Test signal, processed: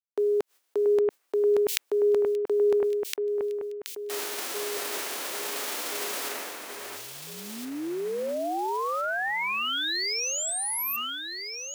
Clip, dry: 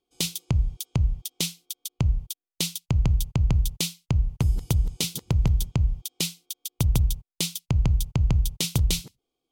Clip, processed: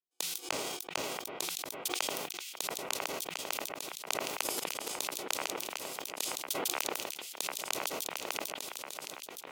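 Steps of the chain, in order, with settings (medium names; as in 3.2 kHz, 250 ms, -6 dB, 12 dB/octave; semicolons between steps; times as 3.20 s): formants flattened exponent 0.6; gate with hold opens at -45 dBFS; high-pass 300 Hz 24 dB/octave; inverted gate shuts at -18 dBFS, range -29 dB; echo whose repeats swap between lows and highs 682 ms, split 2.5 kHz, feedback 66%, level -4 dB; decay stretcher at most 24 dB/s; trim -1 dB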